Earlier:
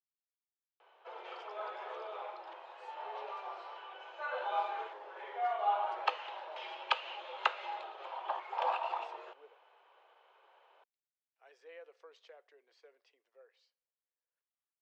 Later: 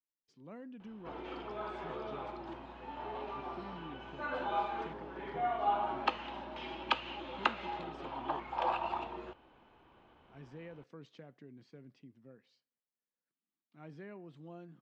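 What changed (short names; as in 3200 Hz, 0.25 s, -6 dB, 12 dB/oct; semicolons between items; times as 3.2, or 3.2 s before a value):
speech: entry -1.10 s; master: remove steep high-pass 450 Hz 48 dB/oct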